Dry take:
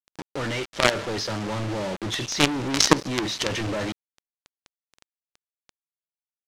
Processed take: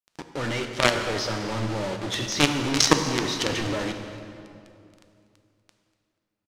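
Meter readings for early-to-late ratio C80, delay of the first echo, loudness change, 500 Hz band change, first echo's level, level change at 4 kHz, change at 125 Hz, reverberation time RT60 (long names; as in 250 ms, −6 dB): 7.5 dB, 242 ms, 0.0 dB, 0.0 dB, −19.5 dB, 0.0 dB, +0.5 dB, 2.6 s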